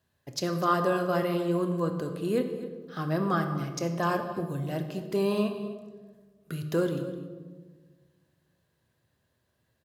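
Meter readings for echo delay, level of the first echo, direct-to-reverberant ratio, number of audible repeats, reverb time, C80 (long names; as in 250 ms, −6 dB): 253 ms, −16.0 dB, 5.5 dB, 1, 1.5 s, 9.0 dB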